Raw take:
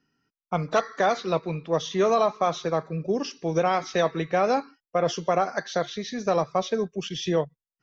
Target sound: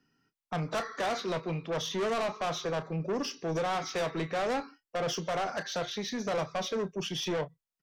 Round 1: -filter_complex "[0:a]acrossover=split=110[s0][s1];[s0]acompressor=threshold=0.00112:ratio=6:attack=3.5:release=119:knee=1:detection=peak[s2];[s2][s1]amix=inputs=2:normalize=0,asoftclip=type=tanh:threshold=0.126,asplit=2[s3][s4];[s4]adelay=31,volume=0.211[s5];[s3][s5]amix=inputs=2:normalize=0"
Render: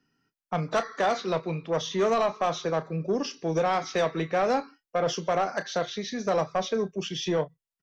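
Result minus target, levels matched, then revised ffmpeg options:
saturation: distortion -9 dB
-filter_complex "[0:a]acrossover=split=110[s0][s1];[s0]acompressor=threshold=0.00112:ratio=6:attack=3.5:release=119:knee=1:detection=peak[s2];[s2][s1]amix=inputs=2:normalize=0,asoftclip=type=tanh:threshold=0.0398,asplit=2[s3][s4];[s4]adelay=31,volume=0.211[s5];[s3][s5]amix=inputs=2:normalize=0"

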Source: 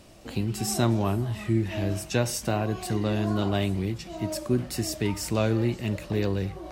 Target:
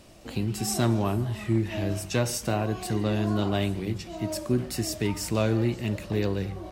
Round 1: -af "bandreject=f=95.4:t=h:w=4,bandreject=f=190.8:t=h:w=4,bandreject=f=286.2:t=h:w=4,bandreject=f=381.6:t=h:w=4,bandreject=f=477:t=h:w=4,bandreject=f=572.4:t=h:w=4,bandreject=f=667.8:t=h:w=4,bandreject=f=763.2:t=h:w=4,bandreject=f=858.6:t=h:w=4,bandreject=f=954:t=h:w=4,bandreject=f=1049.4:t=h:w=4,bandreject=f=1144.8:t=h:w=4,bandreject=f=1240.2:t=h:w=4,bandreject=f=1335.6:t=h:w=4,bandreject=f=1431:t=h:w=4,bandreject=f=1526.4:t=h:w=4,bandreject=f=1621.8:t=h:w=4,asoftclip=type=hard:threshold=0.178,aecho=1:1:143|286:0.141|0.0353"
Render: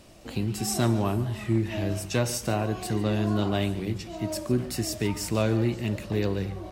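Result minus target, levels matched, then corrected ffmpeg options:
echo-to-direct +6.5 dB
-af "bandreject=f=95.4:t=h:w=4,bandreject=f=190.8:t=h:w=4,bandreject=f=286.2:t=h:w=4,bandreject=f=381.6:t=h:w=4,bandreject=f=477:t=h:w=4,bandreject=f=572.4:t=h:w=4,bandreject=f=667.8:t=h:w=4,bandreject=f=763.2:t=h:w=4,bandreject=f=858.6:t=h:w=4,bandreject=f=954:t=h:w=4,bandreject=f=1049.4:t=h:w=4,bandreject=f=1144.8:t=h:w=4,bandreject=f=1240.2:t=h:w=4,bandreject=f=1335.6:t=h:w=4,bandreject=f=1431:t=h:w=4,bandreject=f=1526.4:t=h:w=4,bandreject=f=1621.8:t=h:w=4,asoftclip=type=hard:threshold=0.178,aecho=1:1:143|286:0.0668|0.0167"

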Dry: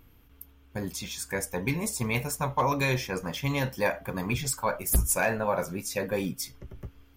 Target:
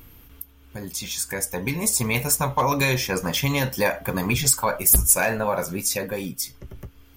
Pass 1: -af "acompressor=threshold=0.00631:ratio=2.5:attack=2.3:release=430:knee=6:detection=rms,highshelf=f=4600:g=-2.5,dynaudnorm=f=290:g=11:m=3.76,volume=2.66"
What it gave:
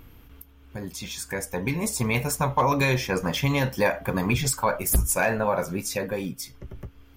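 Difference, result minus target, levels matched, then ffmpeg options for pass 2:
8 kHz band -5.0 dB
-af "acompressor=threshold=0.00631:ratio=2.5:attack=2.3:release=430:knee=6:detection=rms,highshelf=f=4600:g=8,dynaudnorm=f=290:g=11:m=3.76,volume=2.66"

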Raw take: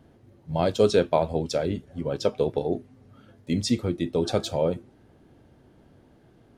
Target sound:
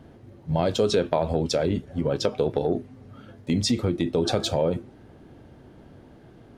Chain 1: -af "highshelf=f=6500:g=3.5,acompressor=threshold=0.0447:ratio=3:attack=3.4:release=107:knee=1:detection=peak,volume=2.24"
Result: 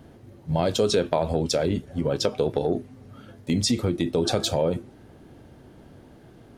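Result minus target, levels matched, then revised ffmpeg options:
8 kHz band +3.5 dB
-af "highshelf=f=6500:g=-6,acompressor=threshold=0.0447:ratio=3:attack=3.4:release=107:knee=1:detection=peak,volume=2.24"

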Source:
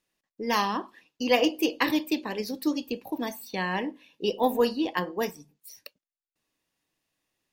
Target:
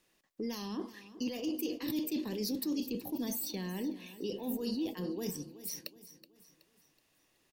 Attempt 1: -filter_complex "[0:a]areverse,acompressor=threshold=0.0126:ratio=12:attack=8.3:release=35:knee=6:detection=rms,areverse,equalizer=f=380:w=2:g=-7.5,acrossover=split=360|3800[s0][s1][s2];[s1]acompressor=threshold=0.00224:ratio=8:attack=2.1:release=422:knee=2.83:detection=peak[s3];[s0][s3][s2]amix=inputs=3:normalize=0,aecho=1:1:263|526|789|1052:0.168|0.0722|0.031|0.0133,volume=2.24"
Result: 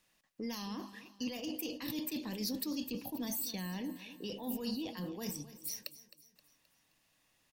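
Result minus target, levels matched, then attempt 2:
echo 111 ms early; 500 Hz band -3.0 dB
-filter_complex "[0:a]areverse,acompressor=threshold=0.0126:ratio=12:attack=8.3:release=35:knee=6:detection=rms,areverse,equalizer=f=380:w=2:g=3,acrossover=split=360|3800[s0][s1][s2];[s1]acompressor=threshold=0.00224:ratio=8:attack=2.1:release=422:knee=2.83:detection=peak[s3];[s0][s3][s2]amix=inputs=3:normalize=0,aecho=1:1:374|748|1122|1496:0.168|0.0722|0.031|0.0133,volume=2.24"

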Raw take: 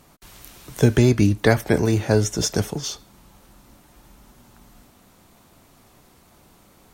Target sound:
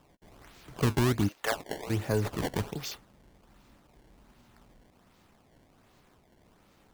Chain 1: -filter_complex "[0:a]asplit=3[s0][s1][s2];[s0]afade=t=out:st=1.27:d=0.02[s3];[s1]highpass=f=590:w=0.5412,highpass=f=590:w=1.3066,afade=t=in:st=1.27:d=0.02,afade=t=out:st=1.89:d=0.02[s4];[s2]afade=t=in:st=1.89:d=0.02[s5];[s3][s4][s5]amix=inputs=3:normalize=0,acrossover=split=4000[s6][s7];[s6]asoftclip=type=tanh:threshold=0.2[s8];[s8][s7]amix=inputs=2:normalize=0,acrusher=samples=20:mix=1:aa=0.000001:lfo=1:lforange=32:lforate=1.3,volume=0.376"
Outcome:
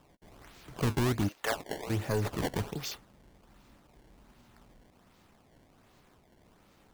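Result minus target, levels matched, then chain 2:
saturation: distortion +7 dB
-filter_complex "[0:a]asplit=3[s0][s1][s2];[s0]afade=t=out:st=1.27:d=0.02[s3];[s1]highpass=f=590:w=0.5412,highpass=f=590:w=1.3066,afade=t=in:st=1.27:d=0.02,afade=t=out:st=1.89:d=0.02[s4];[s2]afade=t=in:st=1.89:d=0.02[s5];[s3][s4][s5]amix=inputs=3:normalize=0,acrossover=split=4000[s6][s7];[s6]asoftclip=type=tanh:threshold=0.422[s8];[s8][s7]amix=inputs=2:normalize=0,acrusher=samples=20:mix=1:aa=0.000001:lfo=1:lforange=32:lforate=1.3,volume=0.376"

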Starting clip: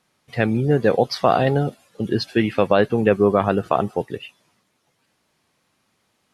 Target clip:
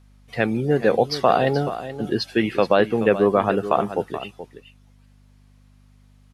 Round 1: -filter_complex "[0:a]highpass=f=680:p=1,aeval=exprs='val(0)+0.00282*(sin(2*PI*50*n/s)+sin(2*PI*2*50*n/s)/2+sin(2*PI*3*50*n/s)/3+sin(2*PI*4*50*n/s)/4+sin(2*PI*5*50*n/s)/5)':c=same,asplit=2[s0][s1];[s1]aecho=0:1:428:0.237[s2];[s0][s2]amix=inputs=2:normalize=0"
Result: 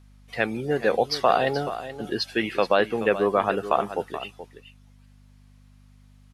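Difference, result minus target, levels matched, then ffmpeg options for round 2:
250 Hz band -3.0 dB
-filter_complex "[0:a]highpass=f=200:p=1,aeval=exprs='val(0)+0.00282*(sin(2*PI*50*n/s)+sin(2*PI*2*50*n/s)/2+sin(2*PI*3*50*n/s)/3+sin(2*PI*4*50*n/s)/4+sin(2*PI*5*50*n/s)/5)':c=same,asplit=2[s0][s1];[s1]aecho=0:1:428:0.237[s2];[s0][s2]amix=inputs=2:normalize=0"

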